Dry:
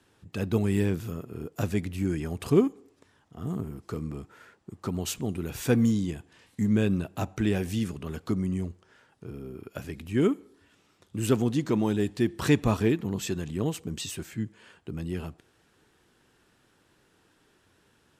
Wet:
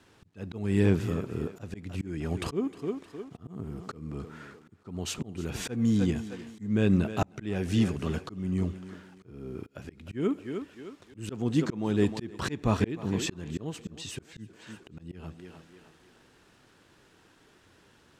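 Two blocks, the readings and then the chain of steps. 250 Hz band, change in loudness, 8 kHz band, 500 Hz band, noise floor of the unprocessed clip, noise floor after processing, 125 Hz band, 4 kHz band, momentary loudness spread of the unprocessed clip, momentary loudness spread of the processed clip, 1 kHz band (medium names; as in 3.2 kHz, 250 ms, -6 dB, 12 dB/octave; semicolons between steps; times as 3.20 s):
-2.0 dB, -2.0 dB, -3.0 dB, -3.5 dB, -66 dBFS, -61 dBFS, -1.5 dB, -1.0 dB, 16 LU, 20 LU, -1.0 dB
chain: bit crusher 11-bit; distance through air 52 m; on a send: thinning echo 309 ms, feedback 47%, high-pass 250 Hz, level -14 dB; on the sum: slow attack 387 ms; trim +4.5 dB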